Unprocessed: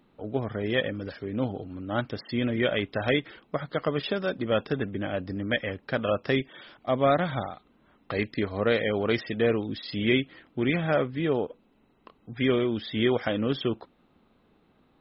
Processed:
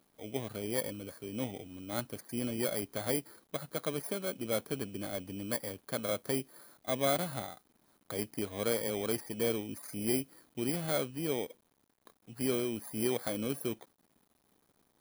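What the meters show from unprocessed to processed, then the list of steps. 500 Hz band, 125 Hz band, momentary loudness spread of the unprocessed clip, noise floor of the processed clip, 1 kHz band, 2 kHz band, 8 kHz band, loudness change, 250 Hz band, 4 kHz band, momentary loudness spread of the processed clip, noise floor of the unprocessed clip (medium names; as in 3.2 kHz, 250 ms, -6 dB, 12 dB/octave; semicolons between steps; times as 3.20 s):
-8.5 dB, -10.0 dB, 9 LU, -74 dBFS, -9.5 dB, -12.5 dB, no reading, -7.5 dB, -8.5 dB, -8.0 dB, 9 LU, -65 dBFS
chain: bit-reversed sample order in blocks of 16 samples; bass shelf 65 Hz -11.5 dB; word length cut 10-bit, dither none; trim -7.5 dB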